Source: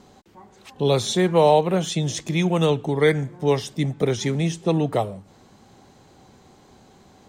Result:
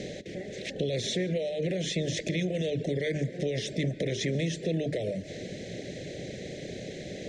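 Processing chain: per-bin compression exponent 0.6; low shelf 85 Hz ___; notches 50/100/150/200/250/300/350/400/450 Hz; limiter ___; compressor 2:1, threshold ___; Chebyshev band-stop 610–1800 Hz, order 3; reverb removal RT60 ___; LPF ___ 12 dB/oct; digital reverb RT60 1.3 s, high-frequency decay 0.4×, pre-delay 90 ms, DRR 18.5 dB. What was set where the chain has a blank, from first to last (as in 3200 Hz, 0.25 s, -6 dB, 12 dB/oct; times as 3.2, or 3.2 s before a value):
+2.5 dB, -14.5 dBFS, -28 dBFS, 0.55 s, 5800 Hz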